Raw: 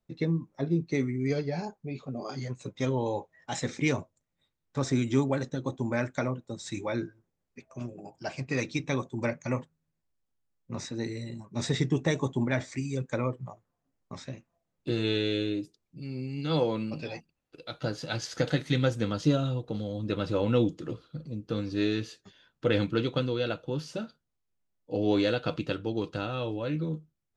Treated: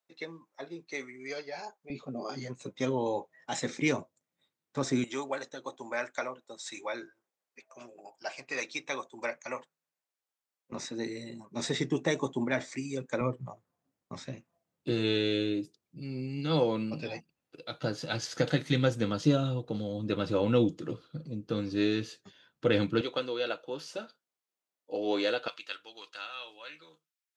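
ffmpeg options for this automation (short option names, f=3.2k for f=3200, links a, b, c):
-af "asetnsamples=n=441:p=0,asendcmd='1.9 highpass f 190;5.04 highpass f 610;10.72 highpass f 230;13.21 highpass f 110;23.01 highpass f 430;25.48 highpass f 1500',highpass=720"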